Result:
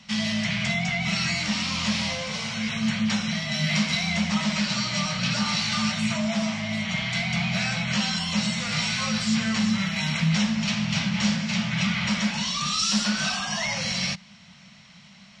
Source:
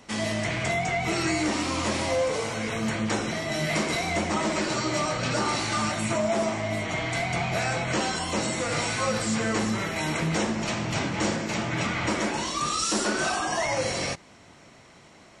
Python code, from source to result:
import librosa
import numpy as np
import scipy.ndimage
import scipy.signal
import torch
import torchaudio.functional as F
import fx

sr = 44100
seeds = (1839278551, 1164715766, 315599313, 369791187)

y = fx.curve_eq(x, sr, hz=(110.0, 200.0, 340.0, 580.0, 1800.0, 3000.0, 5300.0, 9300.0), db=(0, 14, -24, -6, 3, 10, 9, -8))
y = F.gain(torch.from_numpy(y), -3.0).numpy()